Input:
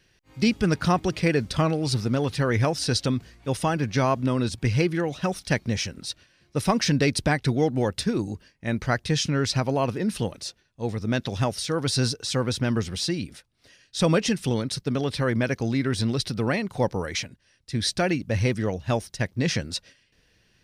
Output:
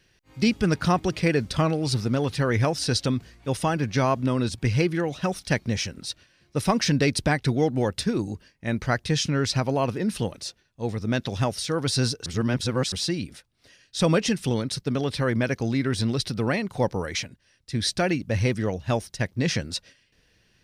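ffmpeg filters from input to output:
ffmpeg -i in.wav -filter_complex "[0:a]asplit=3[link_01][link_02][link_03];[link_01]atrim=end=12.262[link_04];[link_02]atrim=start=12.258:end=12.922,asetpts=PTS-STARTPTS,areverse[link_05];[link_03]atrim=start=12.918[link_06];[link_04][link_05]acrossfade=duration=0.004:curve1=hsin:curve2=hsin[link_07];[link_07][link_06]acrossfade=duration=0.004:curve1=hsin:curve2=hsin" out.wav

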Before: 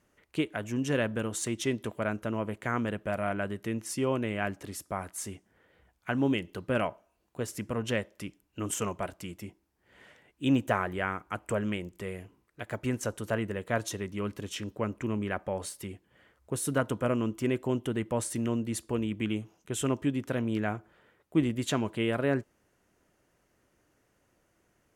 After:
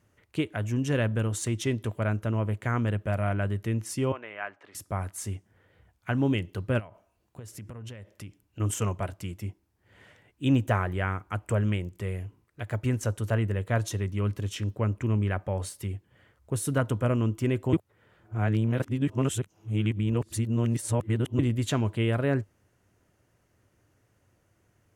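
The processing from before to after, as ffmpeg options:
ffmpeg -i in.wav -filter_complex "[0:a]asettb=1/sr,asplit=3[link_01][link_02][link_03];[link_01]atrim=end=4.124[link_04];[link_02]atrim=start=4.12:end=4.75,asetpts=PTS-STARTPTS,afade=type=in:duration=0.004:curve=qsin,afade=type=out:start_time=0.626:duration=0.004:curve=qsin,highpass=790,lowpass=2200[link_05];[link_03]atrim=start=4.746[link_06];[link_04][link_05]acrossfade=duration=0.004:curve1=hsin:curve2=qsin[link_07];[link_07][link_06]acrossfade=duration=0.004:curve1=qsin:curve2=hsin,asettb=1/sr,asplit=3[link_08][link_09][link_10];[link_08]atrim=end=6.794[link_11];[link_09]atrim=start=6.79:end=8.6,asetpts=PTS-STARTPTS,afade=type=in:duration=0.004:curve=qsin,afade=type=out:start_time=1.806:duration=0.004:curve=qsin,acompressor=threshold=-41dB:ratio=16:attack=3.2:release=140:knee=1:detection=peak[link_12];[link_10]atrim=start=8.596[link_13];[link_11][link_12]acrossfade=duration=0.004:curve1=hsin:curve2=qsin[link_14];[link_14][link_13]acrossfade=duration=0.004:curve1=qsin:curve2=hsin,asplit=3[link_15][link_16][link_17];[link_15]atrim=end=17.732[link_18];[link_16]atrim=start=17.728:end=21.392,asetpts=PTS-STARTPTS,areverse[link_19];[link_17]atrim=start=21.388[link_20];[link_18][link_19]acrossfade=duration=0.004:curve1=hsin:curve2=hsin[link_21];[link_21][link_20]acrossfade=duration=0.004:curve1=hsin:curve2=hsin,equalizer=frequency=100:width=1.8:gain=13.5" out.wav

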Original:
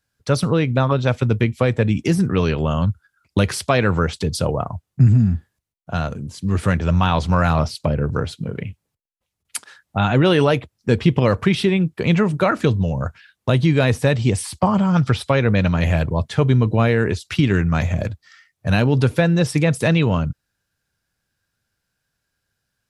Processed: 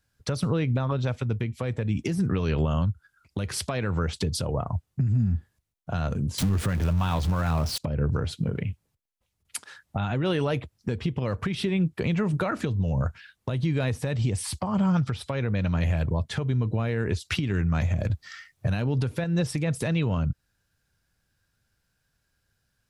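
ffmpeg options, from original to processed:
ffmpeg -i in.wav -filter_complex "[0:a]asettb=1/sr,asplit=3[link_01][link_02][link_03];[link_01]atrim=end=6.384[link_04];[link_02]atrim=start=6.38:end=7.78,asetpts=PTS-STARTPTS,afade=type=in:duration=0.004:curve=qsin,afade=type=out:start_time=1.396:duration=0.004:curve=qsin,aeval=exprs='val(0)+0.5*0.0631*sgn(val(0))':channel_layout=same[link_05];[link_03]atrim=start=7.776[link_06];[link_04][link_05]acrossfade=duration=0.004:curve1=hsin:curve2=qsin[link_07];[link_07][link_06]acrossfade=duration=0.004:curve1=qsin:curve2=hsin,asplit=3[link_08][link_09][link_10];[link_08]atrim=end=18.102[link_11];[link_09]atrim=start=18.098:end=19.242,asetpts=PTS-STARTPTS,volume=5.5dB[link_12];[link_10]atrim=start=19.238[link_13];[link_11][link_12]acrossfade=duration=0.004:curve1=hsin:curve2=hsin[link_14];[link_14][link_13]acrossfade=duration=0.004:curve1=hsin:curve2=hsin,lowshelf=frequency=110:gain=8,acompressor=threshold=-20dB:ratio=5,alimiter=limit=-16.5dB:level=0:latency=1:release=210" out.wav

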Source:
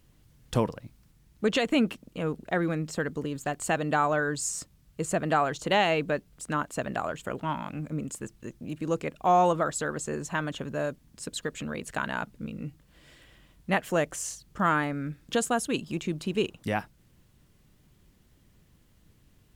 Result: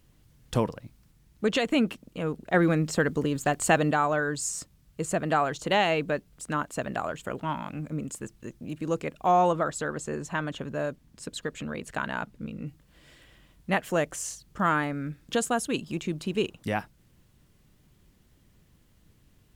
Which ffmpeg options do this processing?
ffmpeg -i in.wav -filter_complex "[0:a]asettb=1/sr,asplit=3[link_01][link_02][link_03];[link_01]atrim=end=9.314[link_04];[link_02]atrim=start=9.31:end=12.67,asetpts=PTS-STARTPTS,afade=type=in:duration=0.004:curve=qsin,afade=type=out:start_time=3.356:duration=0.004:curve=qsin,highshelf=frequency=5400:gain=-5[link_05];[link_03]atrim=start=12.666[link_06];[link_04][link_05]acrossfade=duration=0.004:curve1=hsin:curve2=qsin[link_07];[link_07][link_06]acrossfade=duration=0.004:curve1=qsin:curve2=hsin,asplit=3[link_08][link_09][link_10];[link_08]atrim=end=2.542[link_11];[link_09]atrim=start=2.538:end=3.912,asetpts=PTS-STARTPTS,volume=5.5dB[link_12];[link_10]atrim=start=3.908[link_13];[link_11][link_12]acrossfade=duration=0.004:curve1=hsin:curve2=hsin[link_14];[link_14][link_13]acrossfade=duration=0.004:curve1=hsin:curve2=hsin" out.wav

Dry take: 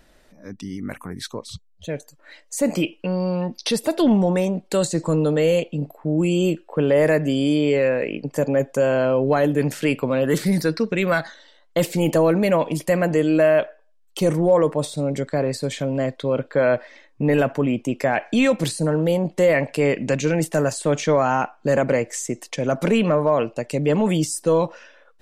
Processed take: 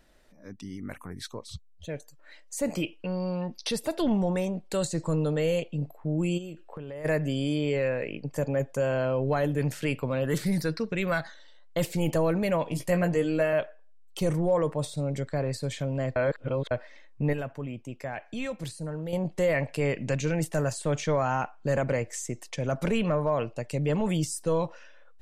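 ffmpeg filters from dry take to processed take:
ffmpeg -i in.wav -filter_complex "[0:a]asplit=3[link_01][link_02][link_03];[link_01]afade=type=out:start_time=6.37:duration=0.02[link_04];[link_02]acompressor=threshold=-28dB:ratio=8:attack=3.2:release=140:knee=1:detection=peak,afade=type=in:start_time=6.37:duration=0.02,afade=type=out:start_time=7.04:duration=0.02[link_05];[link_03]afade=type=in:start_time=7.04:duration=0.02[link_06];[link_04][link_05][link_06]amix=inputs=3:normalize=0,asettb=1/sr,asplit=3[link_07][link_08][link_09];[link_07]atrim=end=12.694[link_10];[link_08]atrim=start=12.69:end=13.53,asetpts=PTS-STARTPTS,afade=type=in:duration=0.004:curve=qsin,afade=type=out:start_time=0.836:duration=0.004:curve=qsin,asplit=2[link_11][link_12];[link_12]adelay=17,volume=-5.5dB[link_13];[link_11][link_13]amix=inputs=2:normalize=0,atrim=end_sample=37044[link_14];[link_09]atrim=start=13.526[link_15];[link_10][link_14]acrossfade=duration=0.004:curve1=hsin:curve2=qsin[link_16];[link_16][link_15]acrossfade=duration=0.004:curve1=qsin:curve2=hsin,asplit=5[link_17][link_18][link_19][link_20][link_21];[link_17]atrim=end=16.162[link_22];[link_18]atrim=start=16.158:end=16.712,asetpts=PTS-STARTPTS,areverse[link_23];[link_19]atrim=start=16.708:end=17.332[link_24];[link_20]atrim=start=17.328:end=19.132,asetpts=PTS-STARTPTS,volume=-7.5dB[link_25];[link_21]atrim=start=19.128[link_26];[link_22][link_23]acrossfade=duration=0.004:curve1=hsin:curve2=hsin[link_27];[link_27][link_24]acrossfade=duration=0.004:curve1=hsin:curve2=hsin[link_28];[link_28][link_25]acrossfade=duration=0.004:curve1=hsin:curve2=hsin[link_29];[link_29][link_26]acrossfade=duration=0.004:curve1=hsin:curve2=hsin,asubboost=boost=4.5:cutoff=110,volume=-7dB" out.wav

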